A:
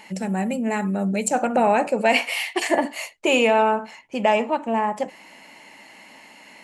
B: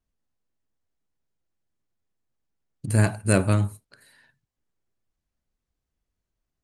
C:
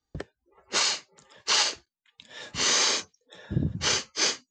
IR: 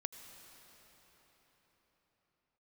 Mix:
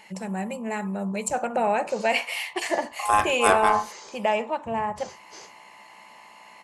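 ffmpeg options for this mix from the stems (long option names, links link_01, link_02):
-filter_complex "[0:a]volume=-4.5dB[link_01];[1:a]equalizer=frequency=840:width_type=o:width=0.77:gain=4.5,aeval=exprs='val(0)+0.00355*(sin(2*PI*60*n/s)+sin(2*PI*2*60*n/s)/2+sin(2*PI*3*60*n/s)/3+sin(2*PI*4*60*n/s)/4+sin(2*PI*5*60*n/s)/5)':channel_layout=same,aeval=exprs='val(0)*sin(2*PI*940*n/s)':channel_layout=same,adelay=150,volume=1.5dB[link_02];[2:a]equalizer=frequency=2900:width=0.51:gain=-12,alimiter=level_in=1dB:limit=-24dB:level=0:latency=1:release=229,volume=-1dB,adelay=1150,volume=-9.5dB[link_03];[link_01][link_02][link_03]amix=inputs=3:normalize=0,equalizer=frequency=270:width_type=o:width=0.3:gain=-13"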